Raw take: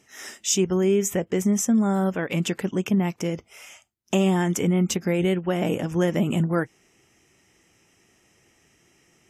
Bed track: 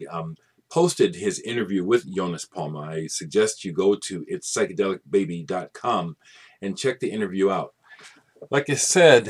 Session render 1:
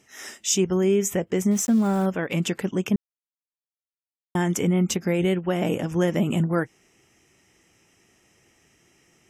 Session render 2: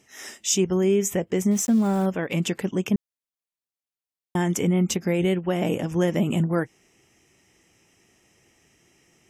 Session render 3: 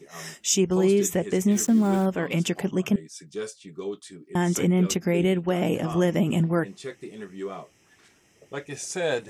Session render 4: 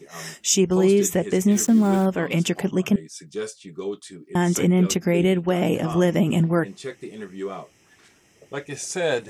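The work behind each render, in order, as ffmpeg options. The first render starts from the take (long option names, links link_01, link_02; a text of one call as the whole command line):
ffmpeg -i in.wav -filter_complex "[0:a]asettb=1/sr,asplit=3[link_01][link_02][link_03];[link_01]atrim=end=1.514[link_04];[link_02]atrim=start=1.51:end=2.06,asetpts=PTS-STARTPTS,afade=type=in:duration=0.004:curve=qsin,afade=type=out:start_time=0.546:duration=0.004:curve=qsin,aeval=exprs='val(0)*gte(abs(val(0)),0.0168)':channel_layout=same[link_05];[link_03]atrim=start=2.056[link_06];[link_04][link_05]acrossfade=duration=0.004:curve1=hsin:curve2=qsin[link_07];[link_07][link_06]acrossfade=duration=0.004:curve1=qsin:curve2=hsin,asplit=3[link_08][link_09][link_10];[link_08]atrim=end=2.96,asetpts=PTS-STARTPTS,afade=type=out:start_time=2.956:duration=0.004:curve=hsin[link_11];[link_09]atrim=start=2.96:end=4.35,asetpts=PTS-STARTPTS,volume=0[link_12];[link_10]atrim=start=4.35,asetpts=PTS-STARTPTS,afade=type=in:duration=0.004:curve=hsin[link_13];[link_11][link_12][link_13]concat=n=3:v=0:a=1" out.wav
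ffmpeg -i in.wav -af "equalizer=frequency=1400:width_type=o:width=0.52:gain=-3" out.wav
ffmpeg -i in.wav -i bed.wav -filter_complex "[1:a]volume=-13dB[link_01];[0:a][link_01]amix=inputs=2:normalize=0" out.wav
ffmpeg -i in.wav -af "volume=3dB" out.wav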